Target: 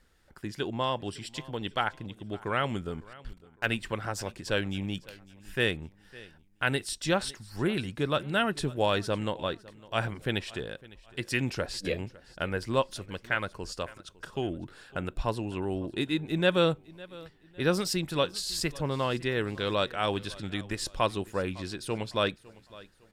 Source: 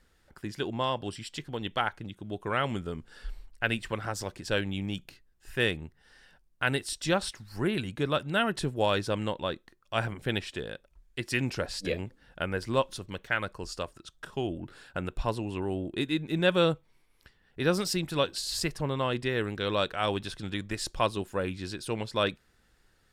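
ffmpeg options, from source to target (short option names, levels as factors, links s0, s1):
-filter_complex "[0:a]asettb=1/sr,asplit=3[s0][s1][s2];[s0]atrim=end=3.134[s3];[s1]atrim=start=3.13:end=3.66,asetpts=PTS-STARTPTS,afade=t=in:d=0.004:c=qsin,afade=t=out:st=0.526:d=0.004:c=qsin,aeval=exprs='sgn(val(0))*max(abs(val(0))-0.0119,0)':c=same[s4];[s2]atrim=start=3.656[s5];[s3][s4]acrossfade=d=0.004:c1=hsin:c2=qsin[s6];[s6][s5]acrossfade=d=0.004:c1=qsin:c2=hsin,aecho=1:1:556|1112|1668:0.0891|0.0321|0.0116"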